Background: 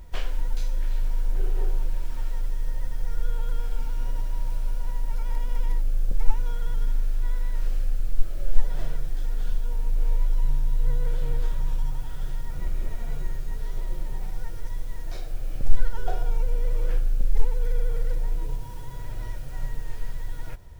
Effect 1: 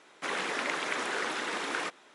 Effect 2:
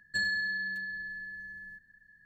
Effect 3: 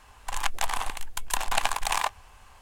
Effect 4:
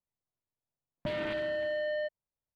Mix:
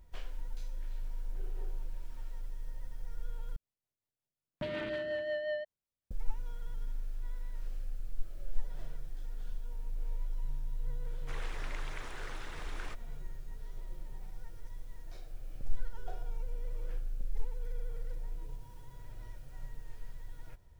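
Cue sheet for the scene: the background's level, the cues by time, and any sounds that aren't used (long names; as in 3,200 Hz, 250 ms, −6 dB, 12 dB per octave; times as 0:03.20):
background −14 dB
0:03.56: overwrite with 4 −0.5 dB + rotating-speaker cabinet horn 5.5 Hz
0:11.05: mix in 1 −14 dB
not used: 2, 3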